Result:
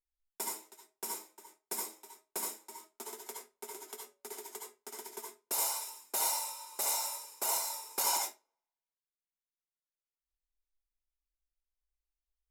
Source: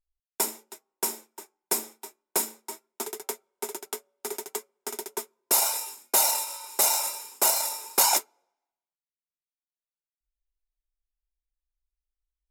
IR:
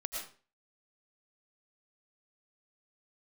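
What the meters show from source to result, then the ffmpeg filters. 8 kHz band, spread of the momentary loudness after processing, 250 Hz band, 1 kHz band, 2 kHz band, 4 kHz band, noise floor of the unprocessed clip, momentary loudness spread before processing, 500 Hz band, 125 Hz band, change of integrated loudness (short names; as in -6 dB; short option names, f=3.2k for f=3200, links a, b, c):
-9.5 dB, 15 LU, -11.5 dB, -8.0 dB, -9.5 dB, -9.0 dB, under -85 dBFS, 15 LU, -11.0 dB, n/a, -9.5 dB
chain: -filter_complex "[1:a]atrim=start_sample=2205,asetrate=70560,aresample=44100[a];[0:a][a]afir=irnorm=-1:irlink=0,volume=-6.5dB"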